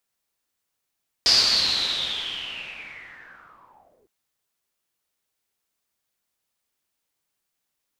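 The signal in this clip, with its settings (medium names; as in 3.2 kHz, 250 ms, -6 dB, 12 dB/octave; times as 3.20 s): swept filtered noise white, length 2.81 s lowpass, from 4.9 kHz, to 360 Hz, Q 9.6, linear, gain ramp -35.5 dB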